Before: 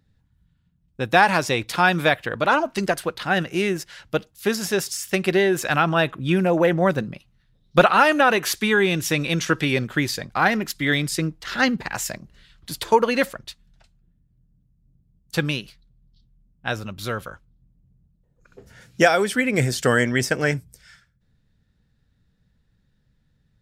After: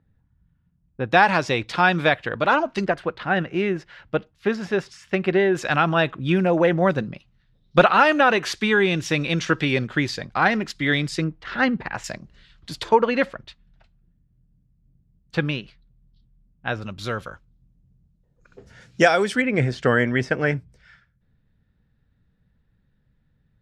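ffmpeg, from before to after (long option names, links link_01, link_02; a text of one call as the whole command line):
ffmpeg -i in.wav -af "asetnsamples=nb_out_samples=441:pad=0,asendcmd='1.12 lowpass f 4600;2.85 lowpass f 2400;5.55 lowpass f 5000;11.24 lowpass f 2500;12.04 lowpass f 5700;12.89 lowpass f 3000;16.82 lowpass f 6600;19.42 lowpass f 2700',lowpass=1800" out.wav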